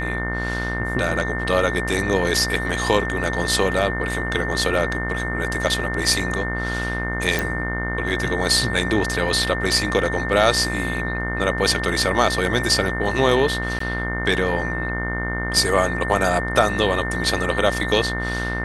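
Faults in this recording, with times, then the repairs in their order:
buzz 60 Hz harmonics 36 -27 dBFS
tone 1800 Hz -27 dBFS
7.39 pop
13.79–13.8 gap 14 ms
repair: de-click; de-hum 60 Hz, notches 36; notch 1800 Hz, Q 30; interpolate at 13.79, 14 ms

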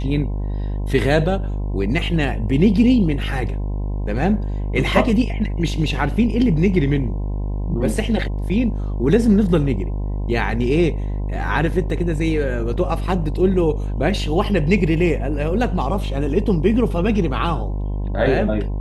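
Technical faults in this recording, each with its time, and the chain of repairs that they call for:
buzz 50 Hz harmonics 21 -23 dBFS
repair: de-hum 50 Hz, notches 21

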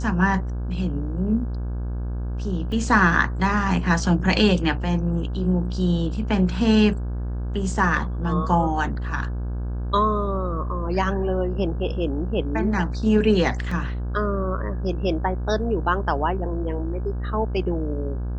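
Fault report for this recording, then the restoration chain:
buzz 60 Hz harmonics 28 -27 dBFS
2.72 gap 2.6 ms
13.71 gap 3.9 ms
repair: de-hum 60 Hz, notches 28; interpolate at 2.72, 2.6 ms; interpolate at 13.71, 3.9 ms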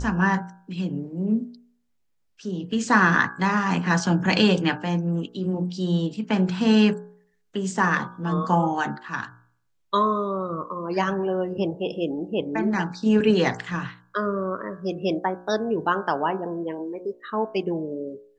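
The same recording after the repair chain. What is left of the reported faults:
none

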